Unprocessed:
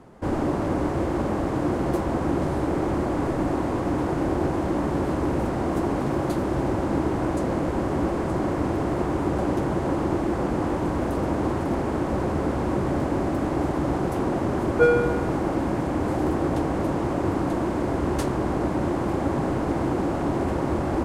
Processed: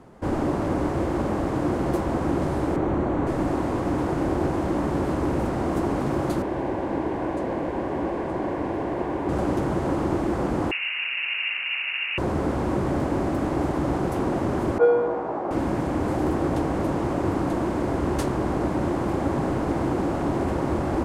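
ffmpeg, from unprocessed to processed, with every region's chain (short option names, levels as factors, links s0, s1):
-filter_complex "[0:a]asettb=1/sr,asplit=3[s0][s1][s2];[s0]atrim=end=2.764[s3];[s1]atrim=start=2.76:end=3.27,asetpts=PTS-STARTPTS,afade=t=in:d=0.004:c=qsin,afade=t=out:st=0.506:d=0.004:c=qsin,aemphasis=mode=reproduction:type=75fm,bandreject=f=5000:w=6.3[s4];[s2]atrim=start=3.266[s5];[s3][s4]acrossfade=d=0.004:c1=hsin:c2=qsin[s6];[s6][s5]acrossfade=d=0.004:c1=qsin:c2=hsin,asettb=1/sr,asplit=3[s7][s8][s9];[s7]atrim=end=6.424[s10];[s8]atrim=start=6.42:end=9.29,asetpts=PTS-STARTPTS,afade=t=in:d=0.004:c=qsin,afade=t=out:st=2.866:d=0.004:c=qsin,bass=f=250:g=-8,treble=f=4000:g=-12,bandreject=f=1300:w=5.2[s11];[s9]atrim=start=9.286[s12];[s10][s11]acrossfade=d=0.004:c1=hsin:c2=qsin[s13];[s13][s12]acrossfade=d=0.004:c1=qsin:c2=hsin,asettb=1/sr,asplit=3[s14][s15][s16];[s14]atrim=end=10.714[s17];[s15]atrim=start=10.71:end=12.18,asetpts=PTS-STARTPTS,afade=t=in:d=0.004:c=qsin,afade=t=out:st=1.466:d=0.004:c=qsin,highpass=320,lowpass=f=2600:t=q:w=0.5098,lowpass=f=2600:t=q:w=0.6013,lowpass=f=2600:t=q:w=0.9,lowpass=f=2600:t=q:w=2.563,afreqshift=-3100[s18];[s16]atrim=start=12.176[s19];[s17][s18]acrossfade=d=0.004:c1=hsin:c2=qsin[s20];[s20][s19]acrossfade=d=0.004:c1=qsin:c2=hsin,asettb=1/sr,asplit=3[s21][s22][s23];[s21]atrim=end=14.784[s24];[s22]atrim=start=14.78:end=15.51,asetpts=PTS-STARTPTS,afade=t=in:d=0.004:c=qsin,afade=t=out:st=0.726:d=0.004:c=qsin,bandpass=f=730:t=q:w=1.3,asplit=2[s25][s26];[s26]adelay=17,volume=0.794[s27];[s25][s27]amix=inputs=2:normalize=0,atrim=end_sample=32193[s28];[s23]atrim=start=15.506[s29];[s24][s28]acrossfade=d=0.004:c1=hsin:c2=qsin[s30];[s30][s29]acrossfade=d=0.004:c1=qsin:c2=hsin"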